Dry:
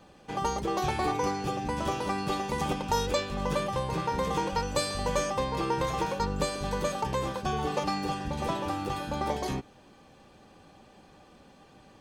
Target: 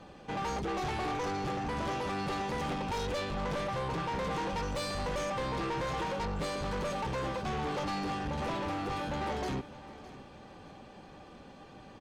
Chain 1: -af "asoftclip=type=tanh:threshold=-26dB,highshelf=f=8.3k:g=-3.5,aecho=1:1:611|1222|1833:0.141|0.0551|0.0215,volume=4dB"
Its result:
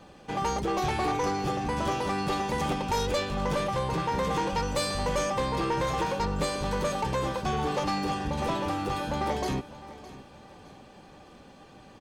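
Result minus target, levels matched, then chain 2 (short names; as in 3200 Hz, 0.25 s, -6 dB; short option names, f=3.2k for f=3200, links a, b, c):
soft clip: distortion -7 dB; 8000 Hz band +3.0 dB
-af "asoftclip=type=tanh:threshold=-35.5dB,highshelf=f=8.3k:g=-15,aecho=1:1:611|1222|1833:0.141|0.0551|0.0215,volume=4dB"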